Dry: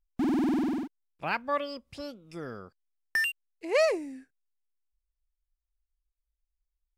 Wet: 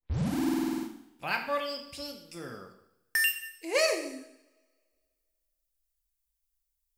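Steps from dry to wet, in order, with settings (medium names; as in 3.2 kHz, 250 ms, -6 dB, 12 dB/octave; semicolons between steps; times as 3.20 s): tape start-up on the opening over 0.36 s; pre-emphasis filter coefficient 0.8; two-slope reverb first 0.74 s, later 2.1 s, from -27 dB, DRR 3 dB; trim +9 dB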